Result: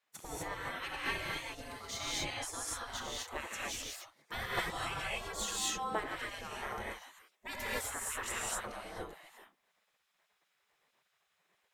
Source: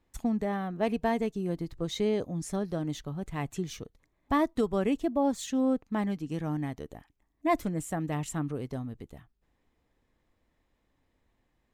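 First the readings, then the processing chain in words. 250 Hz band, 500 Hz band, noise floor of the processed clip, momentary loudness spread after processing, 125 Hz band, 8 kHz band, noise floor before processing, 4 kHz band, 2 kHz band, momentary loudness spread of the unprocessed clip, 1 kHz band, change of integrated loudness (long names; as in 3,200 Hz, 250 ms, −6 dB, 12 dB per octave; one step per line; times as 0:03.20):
−20.5 dB, −13.0 dB, −79 dBFS, 10 LU, −15.0 dB, +6.0 dB, −75 dBFS, +5.0 dB, +4.0 dB, 10 LU, −5.0 dB, −7.0 dB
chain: pitch vibrato 1.7 Hz 10 cents
reverb whose tail is shaped and stops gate 280 ms rising, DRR −6 dB
gate on every frequency bin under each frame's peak −20 dB weak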